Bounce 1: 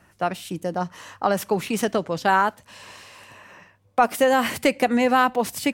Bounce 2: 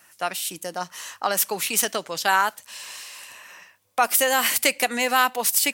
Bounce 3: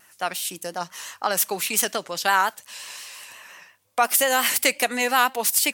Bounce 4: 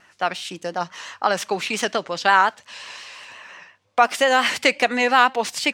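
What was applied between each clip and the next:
tilt EQ +4.5 dB/octave; trim -1.5 dB
vibrato 5.7 Hz 70 cents
distance through air 140 m; trim +5 dB

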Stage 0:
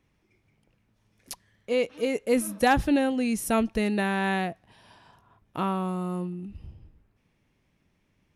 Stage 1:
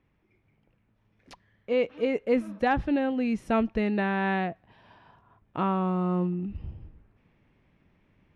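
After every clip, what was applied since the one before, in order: low-pass 2.6 kHz 12 dB/octave; gain riding 0.5 s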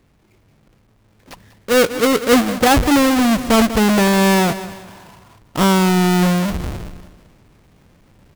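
square wave that keeps the level; feedback delay 195 ms, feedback 46%, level -19 dB; transient shaper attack -1 dB, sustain +6 dB; trim +8 dB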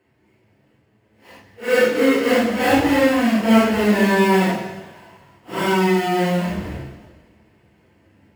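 phase randomisation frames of 200 ms; reverberation RT60 0.90 s, pre-delay 3 ms, DRR 7 dB; trim -10 dB

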